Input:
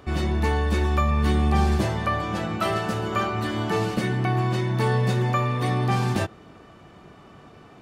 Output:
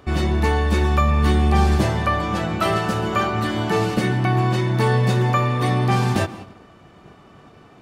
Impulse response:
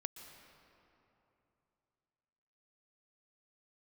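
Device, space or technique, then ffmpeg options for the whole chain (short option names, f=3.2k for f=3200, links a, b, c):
keyed gated reverb: -filter_complex "[0:a]asplit=3[a][b][c];[1:a]atrim=start_sample=2205[d];[b][d]afir=irnorm=-1:irlink=0[e];[c]apad=whole_len=344648[f];[e][f]sidechaingate=range=-33dB:threshold=-44dB:ratio=16:detection=peak,volume=-0.5dB[g];[a][g]amix=inputs=2:normalize=0"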